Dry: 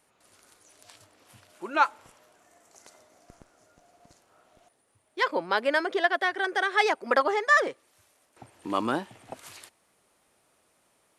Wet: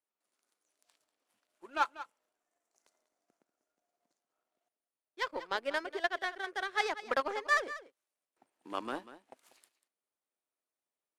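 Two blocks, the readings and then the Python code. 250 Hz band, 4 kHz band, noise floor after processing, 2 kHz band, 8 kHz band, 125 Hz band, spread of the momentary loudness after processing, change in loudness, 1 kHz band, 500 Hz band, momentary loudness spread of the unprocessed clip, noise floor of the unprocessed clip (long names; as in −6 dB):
−12.5 dB, −7.0 dB, below −85 dBFS, −9.0 dB, −6.5 dB, below −15 dB, 12 LU, −9.0 dB, −9.0 dB, −10.0 dB, 22 LU, −69 dBFS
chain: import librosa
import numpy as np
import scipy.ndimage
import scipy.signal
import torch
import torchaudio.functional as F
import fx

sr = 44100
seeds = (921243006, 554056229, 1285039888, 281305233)

y = scipy.signal.sosfilt(scipy.signal.butter(4, 210.0, 'highpass', fs=sr, output='sos'), x)
y = fx.power_curve(y, sr, exponent=1.4)
y = y + 10.0 ** (-14.5 / 20.0) * np.pad(y, (int(192 * sr / 1000.0), 0))[:len(y)]
y = y * librosa.db_to_amplitude(-5.5)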